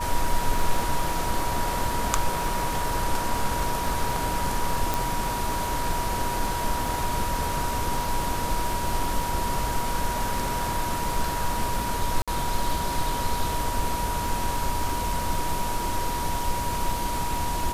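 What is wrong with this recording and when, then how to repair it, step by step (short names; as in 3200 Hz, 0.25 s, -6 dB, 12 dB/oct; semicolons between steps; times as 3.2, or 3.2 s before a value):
crackle 57/s -32 dBFS
tone 960 Hz -29 dBFS
4.94 pop
12.22–12.28 gap 56 ms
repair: de-click; notch 960 Hz, Q 30; interpolate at 12.22, 56 ms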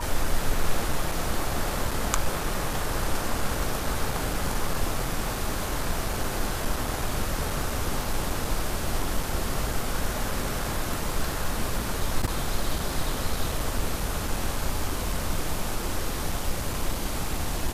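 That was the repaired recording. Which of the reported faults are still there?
4.94 pop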